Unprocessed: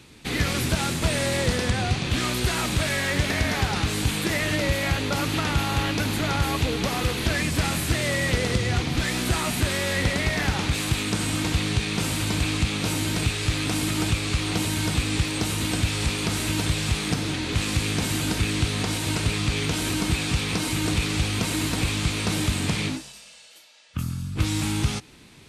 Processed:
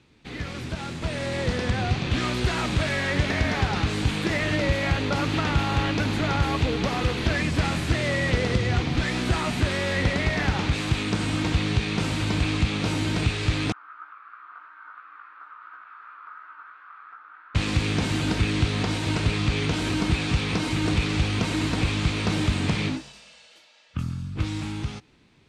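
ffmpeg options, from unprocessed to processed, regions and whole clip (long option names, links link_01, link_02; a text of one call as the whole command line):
ffmpeg -i in.wav -filter_complex "[0:a]asettb=1/sr,asplit=3[link_01][link_02][link_03];[link_01]atrim=end=13.724[link_04];[link_02]atrim=start=13.72:end=17.55,asetpts=PTS-STARTPTS,afade=type=in:duration=0.004:curve=qsin,afade=type=out:start_time=3.826:duration=0.004:curve=qsin,asuperpass=centerf=1300:order=4:qfactor=3.7,flanger=delay=15.5:depth=4.9:speed=2.9[link_05];[link_03]atrim=start=17.546[link_06];[link_04][link_05]acrossfade=duration=0.004:curve1=hsin:curve2=qsin[link_07];[link_07][link_06]acrossfade=duration=0.004:curve1=qsin:curve2=hsin,lowpass=6800,highshelf=frequency=3900:gain=-7,dynaudnorm=framelen=250:gausssize=11:maxgain=11.5dB,volume=-8.5dB" out.wav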